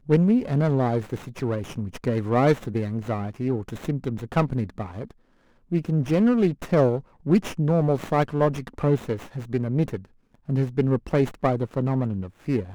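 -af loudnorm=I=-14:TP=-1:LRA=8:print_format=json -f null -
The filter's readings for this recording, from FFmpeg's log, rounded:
"input_i" : "-24.7",
"input_tp" : "-6.7",
"input_lra" : "3.1",
"input_thresh" : "-35.1",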